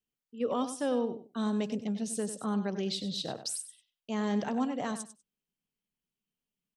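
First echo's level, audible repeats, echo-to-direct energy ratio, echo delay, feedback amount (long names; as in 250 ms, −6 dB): −11.5 dB, 2, −11.5 dB, 97 ms, 16%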